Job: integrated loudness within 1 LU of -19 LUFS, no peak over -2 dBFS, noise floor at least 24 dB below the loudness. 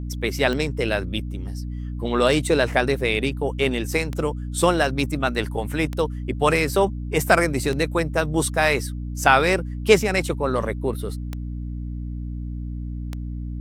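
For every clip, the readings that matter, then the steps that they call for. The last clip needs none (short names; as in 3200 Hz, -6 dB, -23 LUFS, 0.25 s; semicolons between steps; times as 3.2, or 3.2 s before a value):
clicks 8; hum 60 Hz; harmonics up to 300 Hz; hum level -27 dBFS; loudness -23.0 LUFS; peak -1.5 dBFS; loudness target -19.0 LUFS
-> de-click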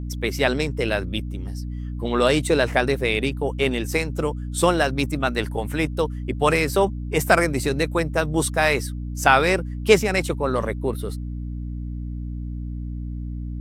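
clicks 0; hum 60 Hz; harmonics up to 300 Hz; hum level -27 dBFS
-> notches 60/120/180/240/300 Hz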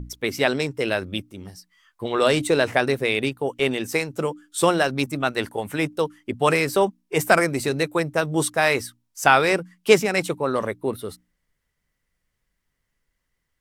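hum none; loudness -22.5 LUFS; peak -1.5 dBFS; loudness target -19.0 LUFS
-> gain +3.5 dB; limiter -2 dBFS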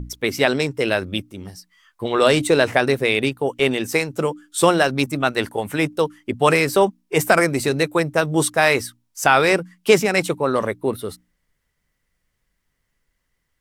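loudness -19.5 LUFS; peak -2.0 dBFS; noise floor -73 dBFS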